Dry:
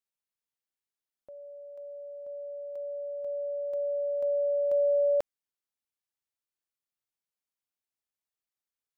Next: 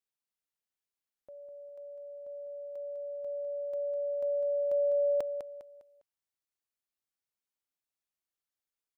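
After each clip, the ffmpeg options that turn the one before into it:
-af "aecho=1:1:202|404|606|808:0.398|0.135|0.046|0.0156,volume=0.75"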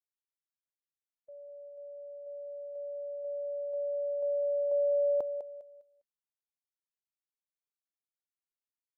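-af "afftdn=nr=16:nf=-44"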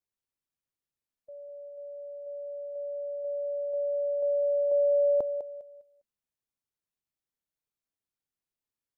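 -af "lowshelf=f=460:g=10"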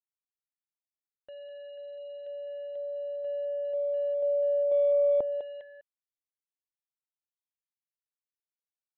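-af "acrusher=bits=7:mix=0:aa=0.5,aresample=8000,aresample=44100"

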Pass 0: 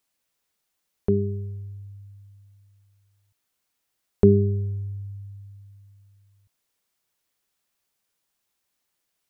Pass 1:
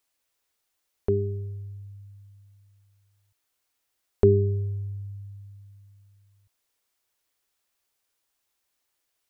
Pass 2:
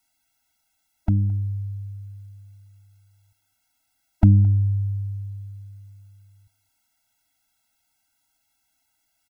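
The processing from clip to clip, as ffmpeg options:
-af "equalizer=f=180:t=o:w=0.53:g=-13.5"
-af "aecho=1:1:217:0.0708,afftfilt=real='re*eq(mod(floor(b*sr/1024/320),2),0)':imag='im*eq(mod(floor(b*sr/1024/320),2),0)':win_size=1024:overlap=0.75,volume=2.66"

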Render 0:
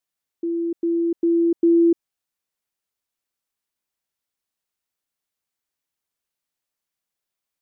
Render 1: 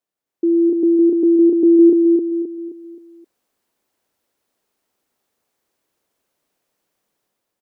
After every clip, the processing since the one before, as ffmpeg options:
-filter_complex "[0:a]equalizer=f=410:t=o:w=2.9:g=12,dynaudnorm=f=220:g=5:m=3.76,asplit=2[s0][s1];[s1]aecho=0:1:263|526|789|1052|1315:0.631|0.259|0.106|0.0435|0.0178[s2];[s0][s2]amix=inputs=2:normalize=0,volume=0.596"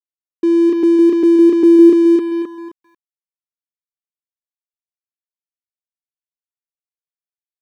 -af "aeval=exprs='sgn(val(0))*max(abs(val(0))-0.0211,0)':c=same,volume=1.5"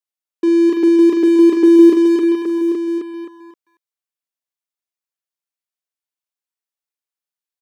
-af "highpass=f=410:p=1,aecho=1:1:42|55|823:0.355|0.15|0.376,volume=1.41"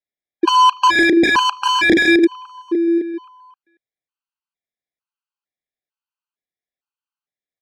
-af "aeval=exprs='(mod(2.82*val(0)+1,2)-1)/2.82':c=same,lowpass=3300,afftfilt=real='re*gt(sin(2*PI*1.1*pts/sr)*(1-2*mod(floor(b*sr/1024/810),2)),0)':imag='im*gt(sin(2*PI*1.1*pts/sr)*(1-2*mod(floor(b*sr/1024/810),2)),0)':win_size=1024:overlap=0.75,volume=1.58"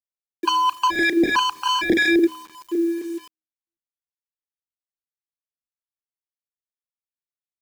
-filter_complex "[0:a]bandreject=f=79.53:t=h:w=4,bandreject=f=159.06:t=h:w=4,bandreject=f=238.59:t=h:w=4,bandreject=f=318.12:t=h:w=4,bandreject=f=397.65:t=h:w=4,bandreject=f=477.18:t=h:w=4,bandreject=f=556.71:t=h:w=4,acrossover=split=750[s0][s1];[s0]aeval=exprs='val(0)*(1-0.7/2+0.7/2*cos(2*PI*3.2*n/s))':c=same[s2];[s1]aeval=exprs='val(0)*(1-0.7/2-0.7/2*cos(2*PI*3.2*n/s))':c=same[s3];[s2][s3]amix=inputs=2:normalize=0,acrossover=split=130[s4][s5];[s5]acrusher=bits=6:mix=0:aa=0.000001[s6];[s4][s6]amix=inputs=2:normalize=0,volume=0.75"

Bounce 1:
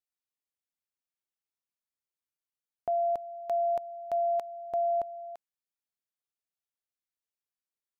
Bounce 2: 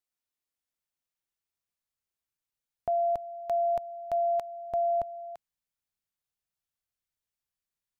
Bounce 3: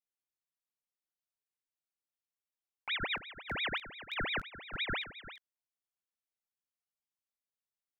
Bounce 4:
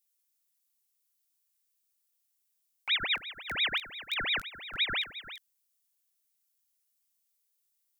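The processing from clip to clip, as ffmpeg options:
-af "asubboost=boost=3:cutoff=170,volume=1.26"
-af "flanger=delay=18.5:depth=3.8:speed=1.4,aeval=exprs='val(0)*sin(2*PI*1900*n/s+1900*0.65/5.8*sin(2*PI*5.8*n/s))':c=same,volume=0.668"
-af "crystalizer=i=8:c=0,volume=0.631"

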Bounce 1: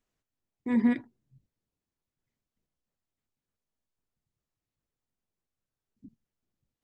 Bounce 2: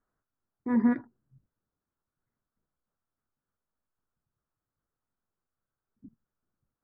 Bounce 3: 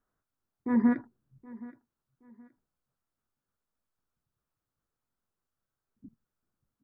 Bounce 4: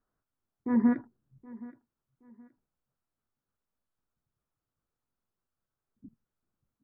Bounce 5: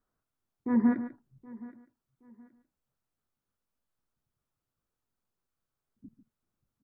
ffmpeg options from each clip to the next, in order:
-af "highshelf=f=2000:t=q:w=3:g=-12.5"
-af "aecho=1:1:772|1544:0.1|0.03"
-af "highshelf=f=2100:g=-7.5"
-af "aecho=1:1:144:0.251"

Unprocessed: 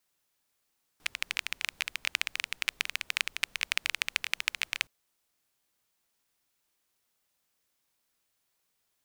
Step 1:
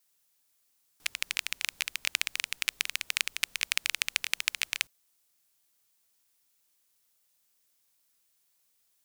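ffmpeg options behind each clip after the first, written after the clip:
-af "highshelf=f=3800:g=10.5,volume=0.708"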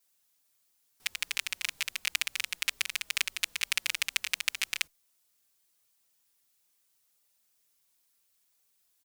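-filter_complex "[0:a]asplit=2[s0][s1];[s1]adelay=4.6,afreqshift=-2.2[s2];[s0][s2]amix=inputs=2:normalize=1,volume=1.33"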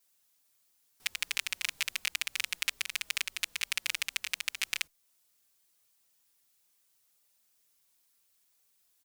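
-af "alimiter=limit=0.316:level=0:latency=1:release=306,volume=1.12"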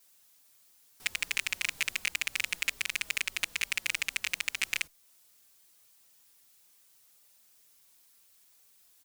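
-af "asoftclip=type=tanh:threshold=0.0562,volume=2.66"

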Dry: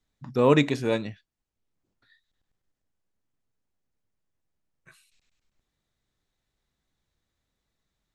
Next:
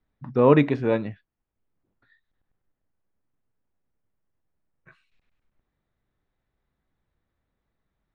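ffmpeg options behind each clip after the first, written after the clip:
-af "lowpass=1900,volume=1.41"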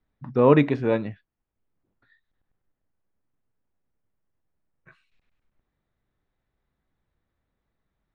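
-af anull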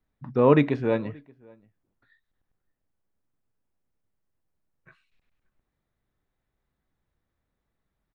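-filter_complex "[0:a]asplit=2[s0][s1];[s1]adelay=577.3,volume=0.0447,highshelf=f=4000:g=-13[s2];[s0][s2]amix=inputs=2:normalize=0,volume=0.841"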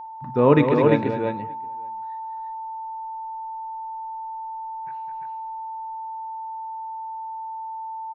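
-af "aeval=exprs='val(0)+0.0158*sin(2*PI*890*n/s)':c=same,aecho=1:1:58|207|344:0.15|0.422|0.631,volume=1.26"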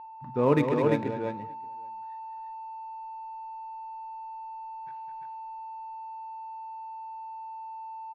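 -af "adynamicsmooth=sensitivity=7.5:basefreq=2900,volume=0.447"

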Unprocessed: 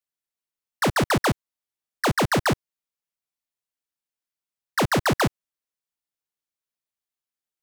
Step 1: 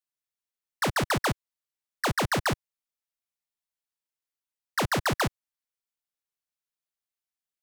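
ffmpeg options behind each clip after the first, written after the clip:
-af "equalizer=f=280:w=0.54:g=-4.5,volume=0.708"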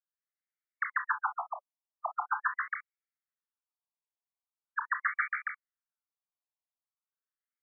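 -af "lowpass=f=2500:t=q:w=1.8,aecho=1:1:145.8|271.1:0.562|0.708,afftfilt=real='re*between(b*sr/1024,810*pow(1700/810,0.5+0.5*sin(2*PI*0.42*pts/sr))/1.41,810*pow(1700/810,0.5+0.5*sin(2*PI*0.42*pts/sr))*1.41)':imag='im*between(b*sr/1024,810*pow(1700/810,0.5+0.5*sin(2*PI*0.42*pts/sr))/1.41,810*pow(1700/810,0.5+0.5*sin(2*PI*0.42*pts/sr))*1.41)':win_size=1024:overlap=0.75,volume=0.562"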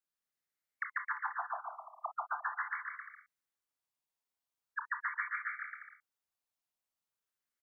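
-af "acompressor=threshold=0.01:ratio=2.5,aecho=1:1:150|262.5|346.9|410.2|457.6:0.631|0.398|0.251|0.158|0.1,volume=1.12"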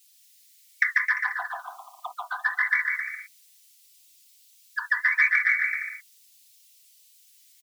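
-af "aecho=1:1:4:0.93,aexciter=amount=13.2:drive=8.4:freq=2100,flanger=delay=5:depth=9.2:regen=-39:speed=1.5:shape=triangular,volume=2"

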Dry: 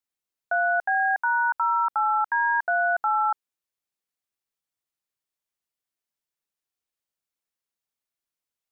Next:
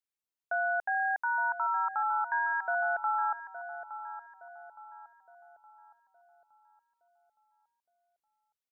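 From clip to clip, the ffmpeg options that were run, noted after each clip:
-filter_complex "[0:a]asplit=2[s0][s1];[s1]adelay=866,lowpass=f=1200:p=1,volume=0.335,asplit=2[s2][s3];[s3]adelay=866,lowpass=f=1200:p=1,volume=0.52,asplit=2[s4][s5];[s5]adelay=866,lowpass=f=1200:p=1,volume=0.52,asplit=2[s6][s7];[s7]adelay=866,lowpass=f=1200:p=1,volume=0.52,asplit=2[s8][s9];[s9]adelay=866,lowpass=f=1200:p=1,volume=0.52,asplit=2[s10][s11];[s11]adelay=866,lowpass=f=1200:p=1,volume=0.52[s12];[s0][s2][s4][s6][s8][s10][s12]amix=inputs=7:normalize=0,volume=0.447"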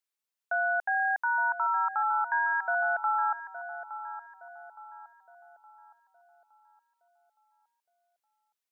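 -af "highpass=f=590:p=1,volume=1.5"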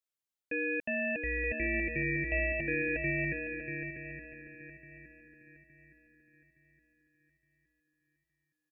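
-filter_complex "[0:a]aeval=exprs='val(0)*sin(2*PI*1000*n/s)':c=same,asplit=2[s0][s1];[s1]aecho=0:1:639|1278|1917:0.501|0.1|0.02[s2];[s0][s2]amix=inputs=2:normalize=0,volume=0.75"

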